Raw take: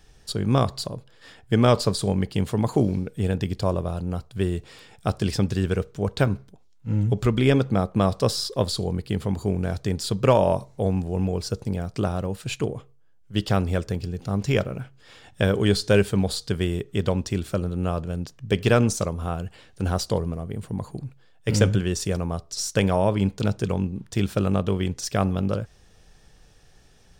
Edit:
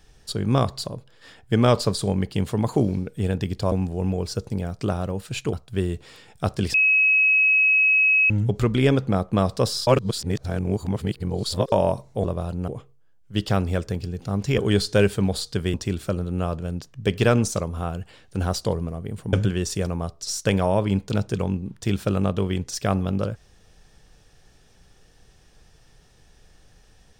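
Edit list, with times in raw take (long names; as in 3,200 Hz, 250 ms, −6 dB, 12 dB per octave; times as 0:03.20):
0:03.72–0:04.16: swap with 0:10.87–0:12.68
0:05.37–0:06.93: beep over 2,560 Hz −14.5 dBFS
0:08.50–0:10.35: reverse
0:14.58–0:15.53: remove
0:16.69–0:17.19: remove
0:20.78–0:21.63: remove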